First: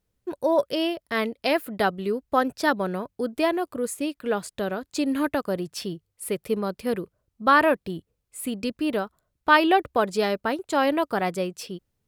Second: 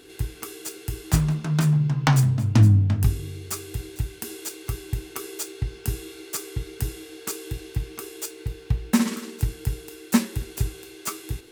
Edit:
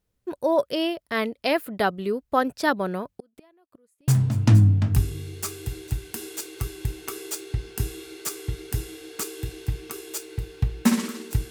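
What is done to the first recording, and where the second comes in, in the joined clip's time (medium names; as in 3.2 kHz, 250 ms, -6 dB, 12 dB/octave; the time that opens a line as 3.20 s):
first
3.07–4.08 s: inverted gate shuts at -24 dBFS, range -35 dB
4.08 s: go over to second from 2.16 s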